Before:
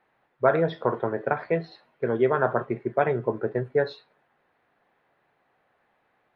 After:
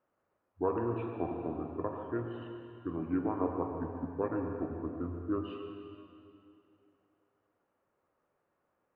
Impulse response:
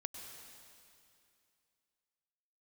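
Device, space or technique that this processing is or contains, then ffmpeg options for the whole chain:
slowed and reverbed: -filter_complex "[0:a]asetrate=31311,aresample=44100[s0];[1:a]atrim=start_sample=2205[s1];[s0][s1]afir=irnorm=-1:irlink=0,volume=0.398"

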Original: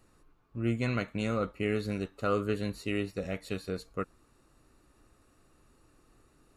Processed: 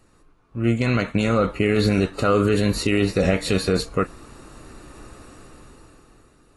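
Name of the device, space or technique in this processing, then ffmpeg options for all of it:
low-bitrate web radio: -af "dynaudnorm=f=200:g=11:m=5.01,alimiter=limit=0.158:level=0:latency=1:release=45,volume=2.11" -ar 24000 -c:a aac -b:a 32k

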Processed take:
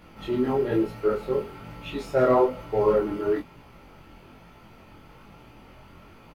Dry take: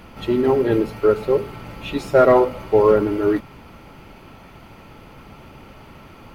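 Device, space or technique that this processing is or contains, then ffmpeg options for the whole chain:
double-tracked vocal: -filter_complex "[0:a]asplit=2[s0][s1];[s1]adelay=24,volume=0.668[s2];[s0][s2]amix=inputs=2:normalize=0,flanger=delay=17:depth=6.4:speed=1.1,volume=0.531"

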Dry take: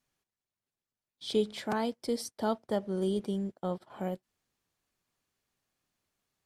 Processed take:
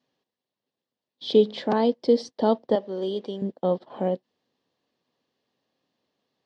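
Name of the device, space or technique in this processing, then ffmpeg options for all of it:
kitchen radio: -filter_complex "[0:a]asettb=1/sr,asplit=3[s0][s1][s2];[s0]atrim=end=2.754[s3];[s1]atrim=start=2.75:end=3.42,asetpts=PTS-STARTPTS,afade=t=in:d=0.004:c=qsin,afade=t=out:st=0.666:d=0.004:c=qsin,highpass=f=700:p=1[s4];[s2]atrim=start=3.416[s5];[s3][s4]acrossfade=d=0.004:c1=hsin:c2=qsin[s6];[s6][s5]acrossfade=d=0.004:c1=qsin:c2=hsin,highpass=170,equalizer=f=260:t=q:w=4:g=5,equalizer=f=500:t=q:w=4:g=7,equalizer=f=1400:t=q:w=4:g=-10,equalizer=f=2300:t=q:w=4:g=-8,lowpass=f=4600:w=0.5412,lowpass=f=4600:w=1.3066,volume=2.51"

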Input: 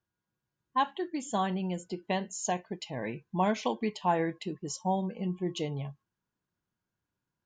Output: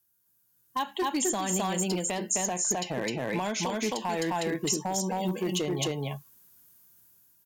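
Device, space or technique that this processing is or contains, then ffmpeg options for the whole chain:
FM broadcast chain: -filter_complex "[0:a]asettb=1/sr,asplit=3[s0][s1][s2];[s0]atrim=end=2.694[s3];[s1]atrim=start=2.69:end=3.57,asetpts=PTS-STARTPTS,afade=t=in:d=0.004:c=qsin,afade=t=out:st=0.876:d=0.004:c=qsin,lowpass=7900[s4];[s2]atrim=start=3.566[s5];[s3][s4]acrossfade=d=0.004:c1=hsin:c2=qsin[s6];[s6][s5]acrossfade=d=0.004:c1=qsin:c2=hsin,highpass=51,aecho=1:1:260:0.708,dynaudnorm=f=440:g=5:m=3.98,acrossover=split=230|2400[s7][s8][s9];[s7]acompressor=threshold=0.0141:ratio=4[s10];[s8]acompressor=threshold=0.0631:ratio=4[s11];[s9]acompressor=threshold=0.00631:ratio=4[s12];[s10][s11][s12]amix=inputs=3:normalize=0,aemphasis=mode=production:type=50fm,alimiter=limit=0.106:level=0:latency=1:release=132,asoftclip=type=hard:threshold=0.0708,lowpass=f=15000:w=0.5412,lowpass=f=15000:w=1.3066,aemphasis=mode=production:type=50fm"

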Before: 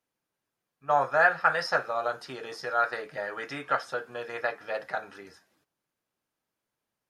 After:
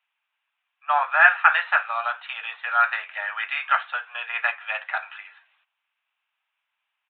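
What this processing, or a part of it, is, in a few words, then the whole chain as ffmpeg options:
musical greeting card: -af "highpass=f=830:w=0.5412,highpass=f=830:w=1.3066,aresample=8000,aresample=44100,highpass=f=620:w=0.5412,highpass=f=620:w=1.3066,equalizer=f=2600:t=o:w=0.57:g=10,volume=2.11"

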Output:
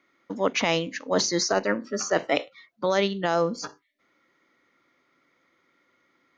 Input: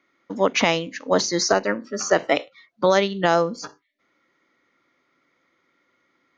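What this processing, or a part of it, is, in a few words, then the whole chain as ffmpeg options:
compression on the reversed sound: -af "areverse,acompressor=threshold=0.112:ratio=6,areverse"

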